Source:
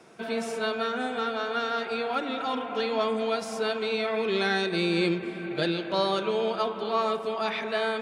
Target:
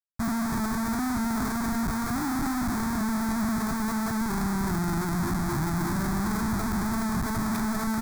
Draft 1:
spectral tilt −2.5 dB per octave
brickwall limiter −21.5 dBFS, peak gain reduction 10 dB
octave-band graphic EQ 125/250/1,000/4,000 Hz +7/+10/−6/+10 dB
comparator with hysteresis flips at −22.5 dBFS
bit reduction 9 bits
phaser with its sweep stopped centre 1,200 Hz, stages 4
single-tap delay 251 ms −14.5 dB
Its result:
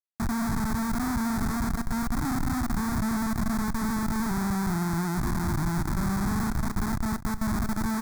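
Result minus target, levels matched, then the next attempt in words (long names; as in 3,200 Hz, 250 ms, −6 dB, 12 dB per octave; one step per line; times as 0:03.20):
comparator with hysteresis: distortion +6 dB
spectral tilt −2.5 dB per octave
brickwall limiter −21.5 dBFS, peak gain reduction 10 dB
octave-band graphic EQ 125/250/1,000/4,000 Hz +7/+10/−6/+10 dB
comparator with hysteresis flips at −28.5 dBFS
bit reduction 9 bits
phaser with its sweep stopped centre 1,200 Hz, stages 4
single-tap delay 251 ms −14.5 dB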